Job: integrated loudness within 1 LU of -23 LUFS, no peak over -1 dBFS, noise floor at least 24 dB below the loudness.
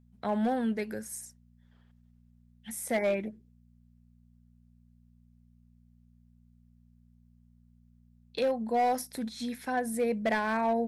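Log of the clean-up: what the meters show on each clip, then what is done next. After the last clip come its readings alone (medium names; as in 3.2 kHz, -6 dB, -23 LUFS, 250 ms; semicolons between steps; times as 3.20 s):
clipped samples 0.7%; clipping level -22.0 dBFS; hum 60 Hz; highest harmonic 240 Hz; hum level -58 dBFS; loudness -31.5 LUFS; peak level -22.0 dBFS; loudness target -23.0 LUFS
-> clip repair -22 dBFS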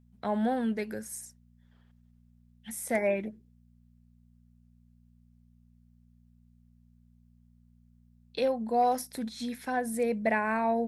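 clipped samples 0.0%; hum 60 Hz; highest harmonic 240 Hz; hum level -58 dBFS
-> de-hum 60 Hz, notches 4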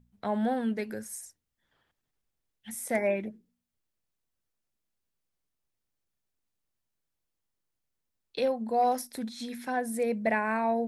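hum not found; loudness -30.5 LUFS; peak level -15.5 dBFS; loudness target -23.0 LUFS
-> trim +7.5 dB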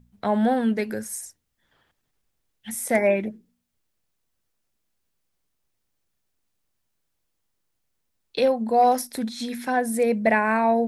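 loudness -23.0 LUFS; peak level -8.0 dBFS; noise floor -76 dBFS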